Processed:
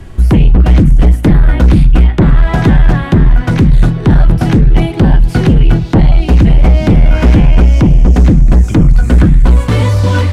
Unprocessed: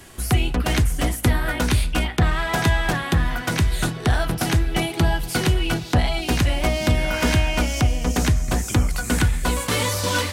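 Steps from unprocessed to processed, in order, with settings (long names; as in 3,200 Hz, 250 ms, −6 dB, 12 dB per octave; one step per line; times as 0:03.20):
RIAA equalisation playback
sine wavefolder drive 9 dB, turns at 5.5 dBFS
level −7 dB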